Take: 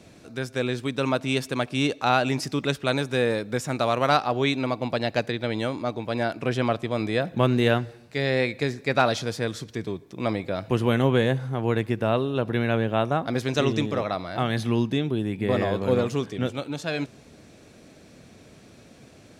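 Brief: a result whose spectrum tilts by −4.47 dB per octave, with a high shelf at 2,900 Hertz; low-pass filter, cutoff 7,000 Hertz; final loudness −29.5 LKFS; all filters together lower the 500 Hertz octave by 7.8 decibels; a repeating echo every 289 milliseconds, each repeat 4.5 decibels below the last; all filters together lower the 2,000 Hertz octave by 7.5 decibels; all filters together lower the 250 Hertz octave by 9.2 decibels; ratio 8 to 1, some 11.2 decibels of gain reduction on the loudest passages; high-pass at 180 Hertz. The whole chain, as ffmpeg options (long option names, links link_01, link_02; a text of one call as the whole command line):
ffmpeg -i in.wav -af "highpass=180,lowpass=7000,equalizer=frequency=250:width_type=o:gain=-7.5,equalizer=frequency=500:width_type=o:gain=-7,equalizer=frequency=2000:width_type=o:gain=-6.5,highshelf=frequency=2900:gain=-8,acompressor=threshold=-32dB:ratio=8,aecho=1:1:289|578|867|1156|1445|1734|2023|2312|2601:0.596|0.357|0.214|0.129|0.0772|0.0463|0.0278|0.0167|0.01,volume=7dB" out.wav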